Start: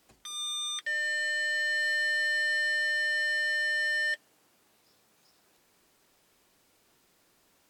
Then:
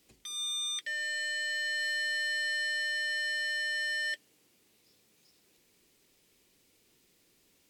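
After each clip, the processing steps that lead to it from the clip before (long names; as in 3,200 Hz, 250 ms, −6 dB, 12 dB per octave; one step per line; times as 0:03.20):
flat-topped bell 1,000 Hz −9 dB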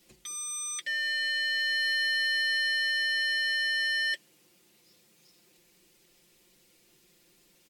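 comb filter 5.7 ms, depth 92%
level +1.5 dB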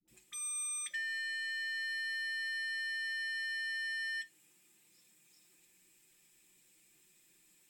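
downward compressor, threshold −33 dBFS, peak gain reduction 7.5 dB
all-pass dispersion highs, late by 79 ms, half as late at 540 Hz
convolution reverb RT60 0.25 s, pre-delay 3 ms, DRR 9 dB
level −4 dB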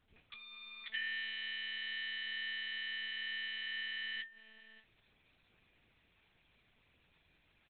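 surface crackle 570 per second −60 dBFS
single-tap delay 586 ms −23 dB
one-pitch LPC vocoder at 8 kHz 220 Hz
level +1.5 dB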